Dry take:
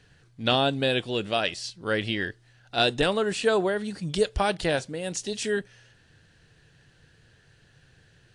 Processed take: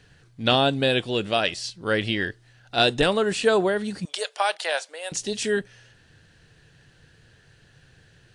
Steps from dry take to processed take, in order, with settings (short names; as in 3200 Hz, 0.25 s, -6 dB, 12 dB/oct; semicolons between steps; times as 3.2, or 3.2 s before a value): 4.05–5.12 HPF 610 Hz 24 dB/oct; gain +3 dB